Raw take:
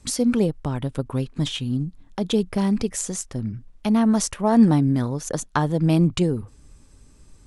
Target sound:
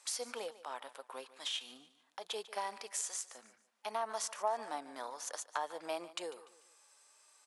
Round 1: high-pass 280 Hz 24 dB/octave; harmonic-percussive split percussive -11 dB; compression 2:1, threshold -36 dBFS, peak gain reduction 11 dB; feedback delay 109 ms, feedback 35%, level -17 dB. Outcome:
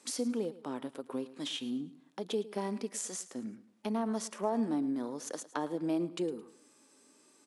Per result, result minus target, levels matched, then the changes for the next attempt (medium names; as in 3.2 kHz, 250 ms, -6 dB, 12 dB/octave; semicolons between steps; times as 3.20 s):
250 Hz band +17.5 dB; echo 38 ms early
change: high-pass 680 Hz 24 dB/octave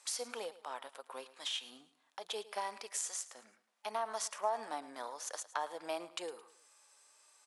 echo 38 ms early
change: feedback delay 147 ms, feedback 35%, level -17 dB